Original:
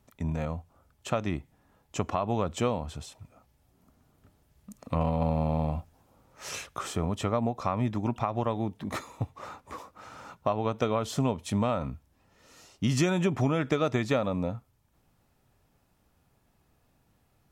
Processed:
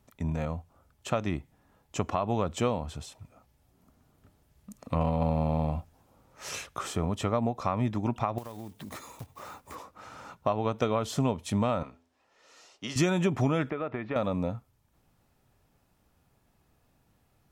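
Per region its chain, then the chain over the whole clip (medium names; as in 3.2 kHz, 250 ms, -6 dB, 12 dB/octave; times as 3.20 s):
8.38–9.76 s: block-companded coder 5-bit + treble shelf 7 kHz +9 dB + compression 4:1, threshold -39 dBFS
11.83–12.96 s: three-band isolator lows -20 dB, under 350 Hz, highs -15 dB, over 8 kHz + de-hum 84.26 Hz, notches 11
13.70–14.16 s: low-pass 2.4 kHz 24 dB/octave + bass shelf 140 Hz -11.5 dB + compression 2:1, threshold -32 dBFS
whole clip: none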